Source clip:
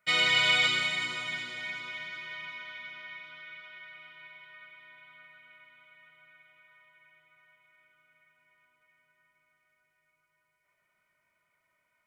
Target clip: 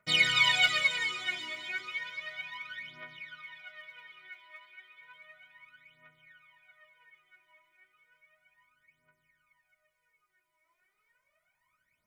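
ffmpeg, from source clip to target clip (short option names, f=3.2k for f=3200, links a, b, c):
-filter_complex "[0:a]aphaser=in_gain=1:out_gain=1:delay=3.2:decay=0.8:speed=0.33:type=triangular,asettb=1/sr,asplit=3[a][b][c];[a]atrim=end=4.294[d];[b]atrim=start=4.29:end=5.01,asetpts=PTS-STARTPTS,afade=t=in:d=0.004:c=qsin,afade=t=out:st=0.716:d=0.004:c=qsin,lowshelf=f=320:g=-10.5[e];[c]atrim=start=5.006[f];[d][e]acrossfade=d=0.004:c1=hsin:c2=qsin[g];[g][f]acrossfade=d=0.004:c1=qsin:c2=hsin,volume=-4.5dB"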